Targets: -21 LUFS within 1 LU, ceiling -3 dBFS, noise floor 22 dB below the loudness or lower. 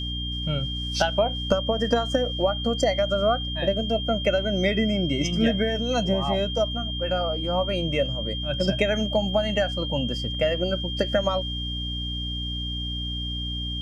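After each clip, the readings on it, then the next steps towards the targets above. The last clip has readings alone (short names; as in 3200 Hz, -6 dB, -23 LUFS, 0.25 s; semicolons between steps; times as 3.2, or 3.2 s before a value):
hum 60 Hz; harmonics up to 300 Hz; hum level -29 dBFS; steady tone 3200 Hz; tone level -31 dBFS; loudness -25.0 LUFS; peak -7.5 dBFS; loudness target -21.0 LUFS
-> de-hum 60 Hz, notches 5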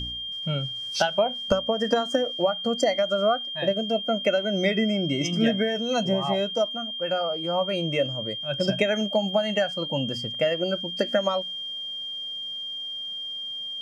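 hum none; steady tone 3200 Hz; tone level -31 dBFS
-> notch 3200 Hz, Q 30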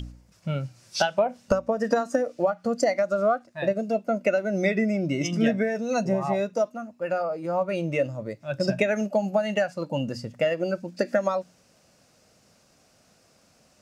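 steady tone none; loudness -26.5 LUFS; peak -7.5 dBFS; loudness target -21.0 LUFS
-> gain +5.5 dB; limiter -3 dBFS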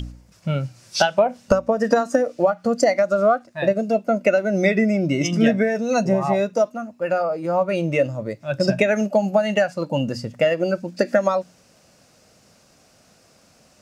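loudness -21.0 LUFS; peak -3.0 dBFS; noise floor -56 dBFS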